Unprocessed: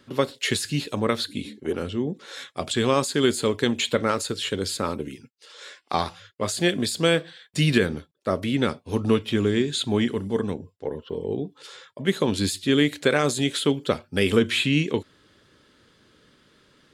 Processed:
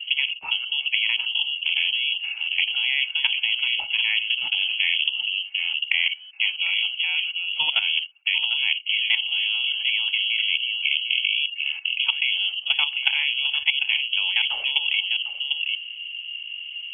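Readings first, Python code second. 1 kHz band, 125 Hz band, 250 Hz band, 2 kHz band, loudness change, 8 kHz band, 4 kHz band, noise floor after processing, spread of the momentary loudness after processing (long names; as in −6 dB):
−12.5 dB, below −40 dB, below −40 dB, +8.5 dB, +3.0 dB, below −40 dB, +10.5 dB, −39 dBFS, 4 LU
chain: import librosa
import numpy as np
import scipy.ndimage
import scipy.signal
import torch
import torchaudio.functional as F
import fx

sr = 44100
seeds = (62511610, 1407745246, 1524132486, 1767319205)

p1 = scipy.signal.sosfilt(scipy.signal.butter(2, 52.0, 'highpass', fs=sr, output='sos'), x)
p2 = fx.low_shelf(p1, sr, hz=210.0, db=8.5)
p3 = fx.level_steps(p2, sr, step_db=15)
p4 = fx.formant_cascade(p3, sr, vowel='u')
p5 = p4 + fx.echo_single(p4, sr, ms=748, db=-13.5, dry=0)
p6 = fx.freq_invert(p5, sr, carrier_hz=3100)
p7 = fx.spectral_comp(p6, sr, ratio=10.0)
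y = F.gain(torch.from_numpy(p7), 8.5).numpy()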